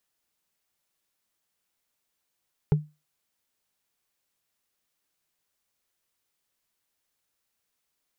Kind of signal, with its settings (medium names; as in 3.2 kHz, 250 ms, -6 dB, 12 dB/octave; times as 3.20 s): wood hit, lowest mode 151 Hz, decay 0.25 s, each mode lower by 8 dB, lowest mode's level -13.5 dB